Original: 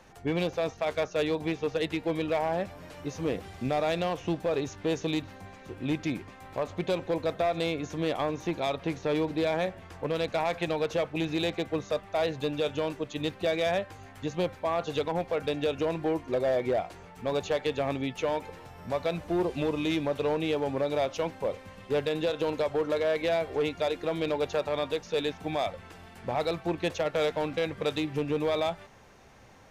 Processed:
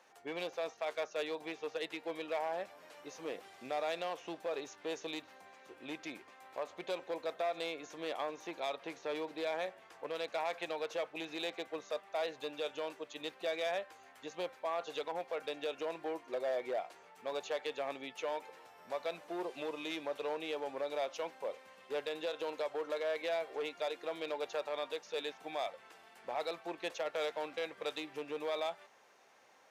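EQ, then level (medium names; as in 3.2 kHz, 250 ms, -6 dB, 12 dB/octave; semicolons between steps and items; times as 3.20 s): high-pass 480 Hz 12 dB/octave; -7.0 dB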